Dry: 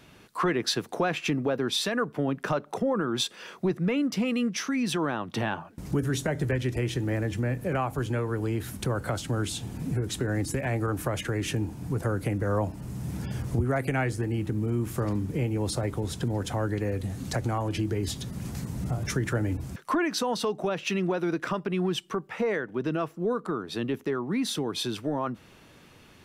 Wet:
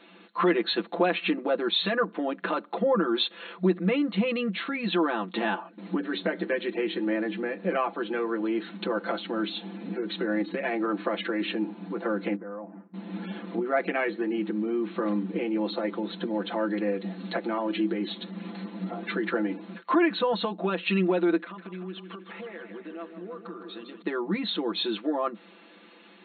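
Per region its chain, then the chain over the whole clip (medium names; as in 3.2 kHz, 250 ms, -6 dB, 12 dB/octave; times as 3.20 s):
12.35–12.94 s: inverse Chebyshev low-pass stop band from 4.5 kHz, stop band 50 dB + gate with hold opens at -27 dBFS, closes at -37 dBFS + compression 4:1, threshold -39 dBFS
21.41–24.02 s: compression 4:1, threshold -42 dBFS + modulated delay 156 ms, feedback 68%, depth 70 cents, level -9 dB
whole clip: comb 5.9 ms, depth 86%; FFT band-pass 180–4300 Hz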